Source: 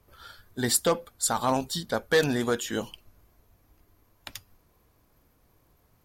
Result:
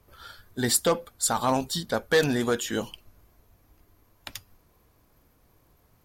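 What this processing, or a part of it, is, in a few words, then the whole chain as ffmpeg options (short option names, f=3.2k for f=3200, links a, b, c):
parallel distortion: -filter_complex "[0:a]asplit=2[a][b];[b]asoftclip=type=hard:threshold=-26.5dB,volume=-12dB[c];[a][c]amix=inputs=2:normalize=0"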